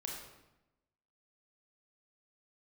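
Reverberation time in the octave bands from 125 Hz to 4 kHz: 1.1, 1.1, 0.95, 0.90, 0.85, 0.70 s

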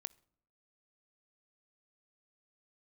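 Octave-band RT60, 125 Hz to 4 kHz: 0.75, 0.75, 0.75, 0.70, 0.50, 0.40 s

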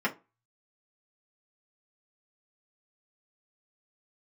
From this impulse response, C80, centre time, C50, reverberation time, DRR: 26.0 dB, 9 ms, 18.0 dB, 0.30 s, -4.0 dB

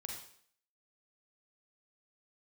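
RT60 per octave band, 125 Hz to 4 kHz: 0.50, 0.60, 0.60, 0.55, 0.60, 0.60 s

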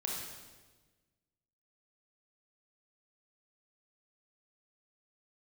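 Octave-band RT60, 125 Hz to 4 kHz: 1.8, 1.6, 1.4, 1.2, 1.2, 1.2 s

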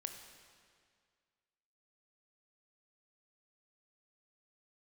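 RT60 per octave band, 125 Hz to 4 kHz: 2.0, 2.0, 2.0, 2.0, 1.9, 1.8 s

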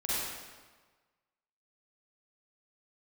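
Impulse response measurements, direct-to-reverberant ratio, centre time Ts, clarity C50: -9.5 dB, 0.129 s, -6.0 dB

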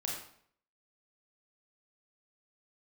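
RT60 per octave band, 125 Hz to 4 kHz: 0.65, 0.60, 0.60, 0.60, 0.55, 0.50 s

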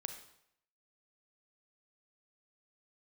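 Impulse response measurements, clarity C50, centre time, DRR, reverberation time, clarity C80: 8.0 dB, 17 ms, 6.5 dB, 0.75 s, 11.0 dB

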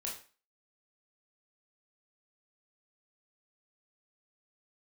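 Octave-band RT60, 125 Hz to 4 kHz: 0.30, 0.35, 0.35, 0.40, 0.35, 0.35 s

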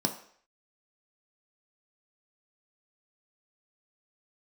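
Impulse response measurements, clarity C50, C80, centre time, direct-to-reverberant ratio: 10.5 dB, 14.0 dB, 14 ms, 3.5 dB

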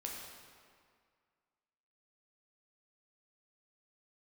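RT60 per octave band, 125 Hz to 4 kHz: 1.9, 2.0, 2.0, 2.1, 1.8, 1.5 s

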